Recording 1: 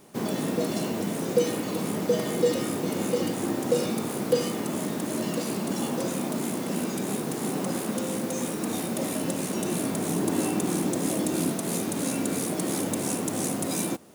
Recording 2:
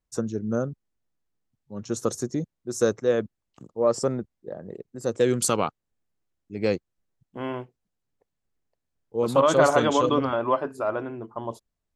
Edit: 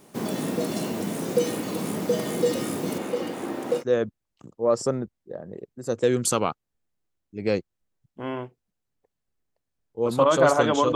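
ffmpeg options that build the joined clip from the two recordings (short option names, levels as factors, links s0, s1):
-filter_complex "[0:a]asettb=1/sr,asplit=3[s0][s1][s2];[s0]atrim=end=2.984[s3];[s1]atrim=start=2.98:end=3.84,asetpts=PTS-STARTPTS,afade=t=in:d=0.004:c=qsin,afade=t=out:st=0.856:d=0.004:c=qsin,bass=f=250:g=-10,treble=f=4000:g=-10[s4];[s2]atrim=start=3.836[s5];[s3][s4]acrossfade=d=0.004:c1=hsin:c2=qsin[s6];[s6][s5]acrossfade=d=0.004:c1=qsin:c2=hsin,apad=whole_dur=10.95,atrim=end=10.95,atrim=end=3.84,asetpts=PTS-STARTPTS[s7];[1:a]atrim=start=2.93:end=10.12,asetpts=PTS-STARTPTS[s8];[s7][s8]acrossfade=d=0.08:c1=tri:c2=tri"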